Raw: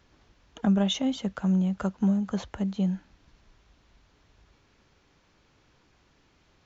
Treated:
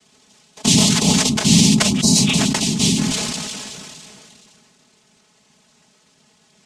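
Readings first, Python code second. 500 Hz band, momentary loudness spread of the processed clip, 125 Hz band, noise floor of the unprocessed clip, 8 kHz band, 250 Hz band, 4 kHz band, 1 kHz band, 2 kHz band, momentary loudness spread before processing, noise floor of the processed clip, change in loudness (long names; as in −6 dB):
+8.0 dB, 14 LU, +11.0 dB, −65 dBFS, can't be measured, +9.0 dB, +20.5 dB, +11.5 dB, +19.5 dB, 7 LU, −58 dBFS, +12.0 dB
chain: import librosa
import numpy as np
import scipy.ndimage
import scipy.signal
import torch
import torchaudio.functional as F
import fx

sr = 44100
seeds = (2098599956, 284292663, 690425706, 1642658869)

y = fx.peak_eq(x, sr, hz=1000.0, db=7.0, octaves=0.44)
y = (np.kron(scipy.signal.resample_poly(y, 1, 6), np.eye(6)[0]) * 6)[:len(y)]
y = fx.hum_notches(y, sr, base_hz=50, count=5)
y = fx.noise_vocoder(y, sr, seeds[0], bands=4)
y = fx.low_shelf(y, sr, hz=250.0, db=10.5)
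y = fx.spec_repair(y, sr, seeds[1], start_s=1.98, length_s=0.34, low_hz=1100.0, high_hz=3800.0, source='both')
y = y + 0.76 * np.pad(y, (int(4.7 * sr / 1000.0), 0))[:len(y)]
y = fx.sustainer(y, sr, db_per_s=22.0)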